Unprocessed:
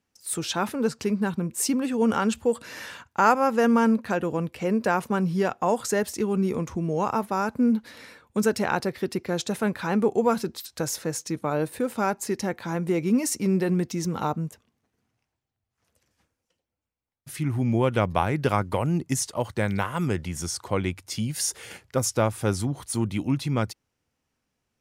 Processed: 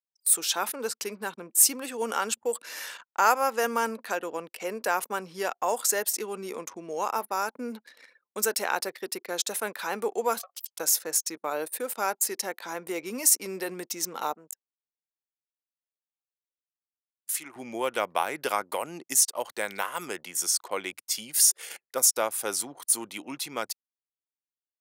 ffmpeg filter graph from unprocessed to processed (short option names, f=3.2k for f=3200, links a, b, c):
-filter_complex "[0:a]asettb=1/sr,asplit=3[a][b][c];[a]atrim=end=10.394[d];[b]atrim=start=10.39:end=10.8,asetpts=PTS-STARTPTS,afade=t=in:d=0.004:c=qsin,afade=t=out:st=0.406:d=0.004:c=qsin,aeval=exprs='val(0)*sin(2*PI*930*n/s)':c=same,acompressor=threshold=-38dB:ratio=20:attack=3.2:release=140:knee=1:detection=peak[e];[c]atrim=start=10.796[f];[d][e]acrossfade=d=0.004:c1=hsin:c2=qsin[g];[g][f]acrossfade=d=0.004:c1=qsin:c2=hsin,asettb=1/sr,asplit=3[h][i][j];[h]atrim=end=14.364[k];[i]atrim=start=14.36:end=17.56,asetpts=PTS-STARTPTS,afade=t=in:d=0.004:c=qsin,afade=t=out:st=3.196:d=0.004:c=qsin,highpass=f=500:p=1,equalizer=f=7.2k:w=3.7:g=6[l];[j]atrim=start=17.556[m];[k][l]acrossfade=d=0.004:c1=hsin:c2=qsin[n];[n][m]acrossfade=d=0.004:c1=qsin:c2=hsin,anlmdn=0.158,highpass=400,aemphasis=mode=production:type=bsi,volume=-2dB"